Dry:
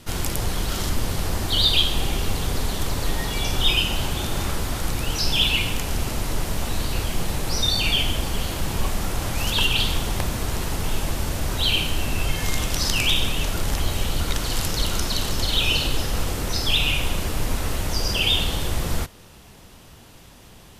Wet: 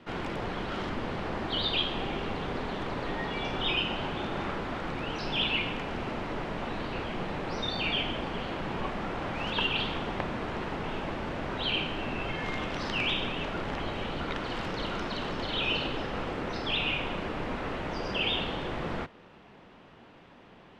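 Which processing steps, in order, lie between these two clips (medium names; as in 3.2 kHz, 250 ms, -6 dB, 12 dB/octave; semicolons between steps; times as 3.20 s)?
low-pass 5.1 kHz 12 dB/octave; three-band isolator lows -16 dB, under 160 Hz, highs -20 dB, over 2.9 kHz; trim -2 dB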